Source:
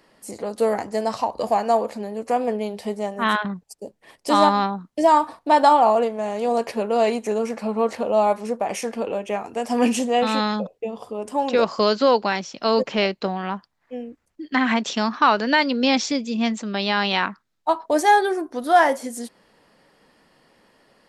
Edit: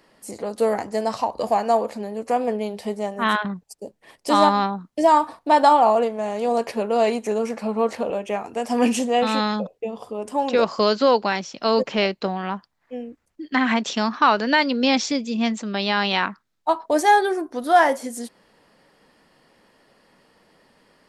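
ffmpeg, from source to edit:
ffmpeg -i in.wav -filter_complex "[0:a]asplit=2[link_01][link_02];[link_01]atrim=end=8.102[link_03];[link_02]atrim=start=9.098[link_04];[link_03][link_04]acrossfade=duration=0.004:curve1=hsin:curve2=hsin" out.wav

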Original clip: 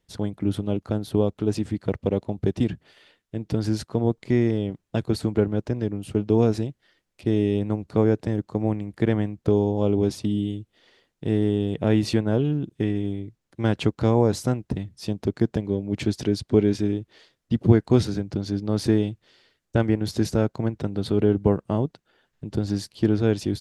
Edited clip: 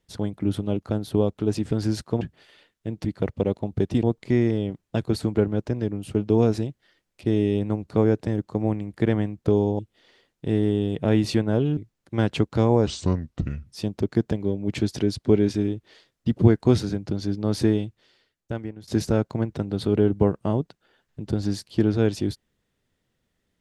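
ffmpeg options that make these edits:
ffmpeg -i in.wav -filter_complex "[0:a]asplit=10[link_01][link_02][link_03][link_04][link_05][link_06][link_07][link_08][link_09][link_10];[link_01]atrim=end=1.712[link_11];[link_02]atrim=start=3.528:end=4.032[link_12];[link_03]atrim=start=2.688:end=3.532[link_13];[link_04]atrim=start=1.708:end=2.692[link_14];[link_05]atrim=start=4.028:end=9.792[link_15];[link_06]atrim=start=10.578:end=12.562[link_16];[link_07]atrim=start=13.228:end=14.334[link_17];[link_08]atrim=start=14.33:end=14.91,asetpts=PTS-STARTPTS,asetrate=32193,aresample=44100,atrim=end_sample=35038,asetpts=PTS-STARTPTS[link_18];[link_09]atrim=start=14.906:end=20.12,asetpts=PTS-STARTPTS,afade=type=out:start_time=3.974:duration=1.24:silence=0.1[link_19];[link_10]atrim=start=20.12,asetpts=PTS-STARTPTS,afade=type=in:duration=0.004:curve=hsin:silence=0.1[link_20];[link_11][link_12]acrossfade=duration=0.004:curve1=hsin:curve2=hsin[link_21];[link_21][link_13]acrossfade=duration=0.004:curve1=hsin:curve2=hsin[link_22];[link_22][link_14]acrossfade=duration=0.004:curve1=hsin:curve2=hsin[link_23];[link_23][link_15]acrossfade=duration=0.004:curve1=hsin:curve2=hsin[link_24];[link_24][link_16]acrossfade=duration=0.004:curve1=hsin:curve2=hsin[link_25];[link_25][link_17]acrossfade=duration=0.004:curve1=hsin:curve2=hsin[link_26];[link_26][link_18]acrossfade=duration=0.004:curve1=hsin:curve2=hsin[link_27];[link_19][link_20]concat=n=2:v=0:a=1[link_28];[link_27][link_28]acrossfade=duration=0.004:curve1=hsin:curve2=hsin" out.wav

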